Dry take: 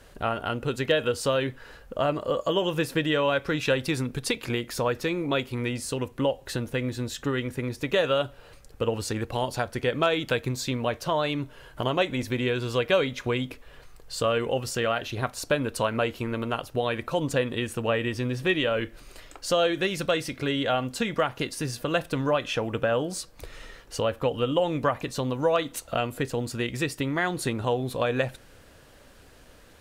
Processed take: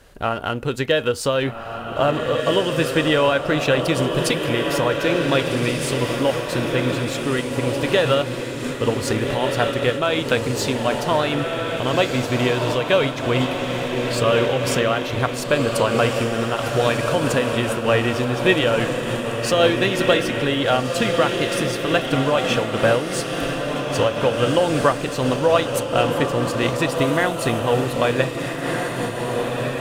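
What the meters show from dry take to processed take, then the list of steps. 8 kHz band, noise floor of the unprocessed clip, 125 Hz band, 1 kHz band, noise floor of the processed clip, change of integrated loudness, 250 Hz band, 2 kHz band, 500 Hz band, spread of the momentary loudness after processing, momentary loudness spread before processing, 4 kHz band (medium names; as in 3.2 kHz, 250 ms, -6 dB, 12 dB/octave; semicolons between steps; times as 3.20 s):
+7.0 dB, -52 dBFS, +7.5 dB, +7.5 dB, -28 dBFS, +7.0 dB, +7.5 dB, +7.5 dB, +7.5 dB, 6 LU, 7 LU, +7.5 dB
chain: in parallel at -5.5 dB: crossover distortion -39 dBFS; on the sum: echo that smears into a reverb 1619 ms, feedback 55%, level -3.5 dB; random flutter of the level, depth 55%; trim +5 dB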